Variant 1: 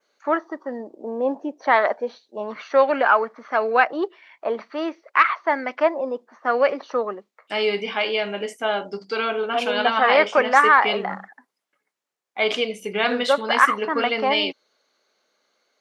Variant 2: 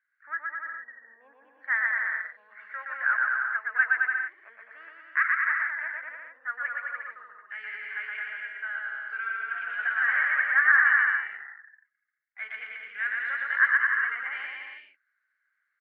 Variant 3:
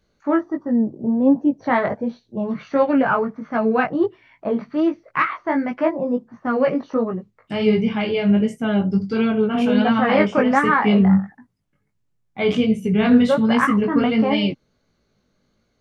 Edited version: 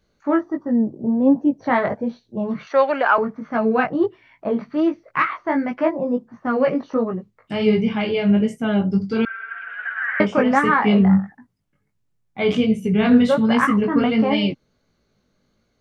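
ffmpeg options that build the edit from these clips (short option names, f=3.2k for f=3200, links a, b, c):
-filter_complex "[2:a]asplit=3[a][b][c];[a]atrim=end=2.672[d];[0:a]atrim=start=2.668:end=3.182[e];[b]atrim=start=3.178:end=9.252[f];[1:a]atrim=start=9.248:end=10.202[g];[c]atrim=start=10.198[h];[d][e]acrossfade=d=0.004:c1=hsin:c2=hsin[i];[i][f]acrossfade=d=0.004:c1=hsin:c2=hsin[j];[j][g]acrossfade=d=0.004:c1=hsin:c2=hsin[k];[k][h]acrossfade=d=0.004:c1=hsin:c2=hsin"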